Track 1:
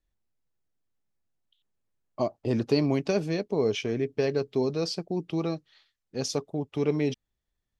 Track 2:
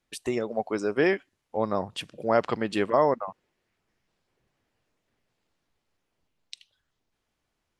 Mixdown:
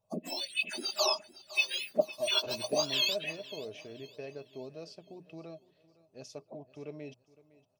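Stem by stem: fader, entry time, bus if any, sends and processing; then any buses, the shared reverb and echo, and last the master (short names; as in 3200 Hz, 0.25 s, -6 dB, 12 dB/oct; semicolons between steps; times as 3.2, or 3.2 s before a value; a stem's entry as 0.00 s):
-18.5 dB, 0.00 s, no send, echo send -20 dB, notches 60/120/180 Hz
-0.5 dB, 0.00 s, no send, echo send -18.5 dB, spectrum mirrored in octaves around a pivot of 1400 Hz; envelope phaser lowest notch 310 Hz, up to 1900 Hz, full sweep at -28 dBFS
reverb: off
echo: feedback echo 0.51 s, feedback 39%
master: bell 210 Hz -4 dB 0.3 oct; small resonant body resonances 620/2600 Hz, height 17 dB, ringing for 75 ms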